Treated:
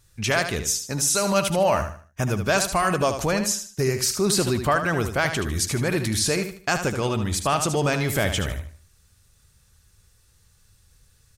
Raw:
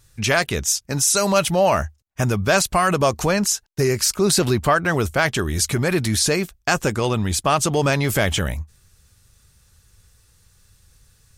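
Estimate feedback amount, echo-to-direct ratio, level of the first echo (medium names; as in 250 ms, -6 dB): 32%, -8.0 dB, -8.5 dB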